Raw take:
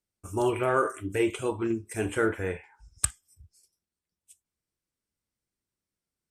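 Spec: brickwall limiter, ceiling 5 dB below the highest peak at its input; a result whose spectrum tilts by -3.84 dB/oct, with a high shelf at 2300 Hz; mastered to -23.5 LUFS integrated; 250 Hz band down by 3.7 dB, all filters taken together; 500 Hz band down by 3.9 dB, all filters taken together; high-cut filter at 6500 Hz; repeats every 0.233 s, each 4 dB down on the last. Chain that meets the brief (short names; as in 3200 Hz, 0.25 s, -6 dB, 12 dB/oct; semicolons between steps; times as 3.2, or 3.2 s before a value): LPF 6500 Hz; bell 250 Hz -3.5 dB; bell 500 Hz -3.5 dB; high shelf 2300 Hz -5.5 dB; limiter -20.5 dBFS; feedback echo 0.233 s, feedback 63%, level -4 dB; gain +8.5 dB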